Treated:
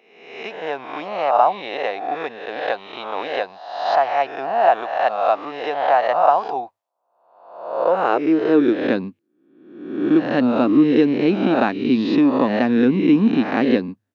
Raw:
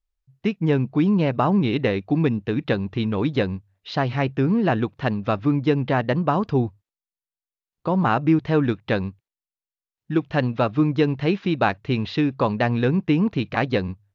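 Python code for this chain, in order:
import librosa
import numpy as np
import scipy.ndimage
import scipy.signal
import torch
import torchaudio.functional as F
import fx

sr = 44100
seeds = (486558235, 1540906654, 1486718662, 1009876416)

y = fx.spec_swells(x, sr, rise_s=0.9)
y = fx.filter_sweep_highpass(y, sr, from_hz=720.0, to_hz=250.0, start_s=7.45, end_s=9.0, q=4.2)
y = y * 10.0 ** (-3.0 / 20.0)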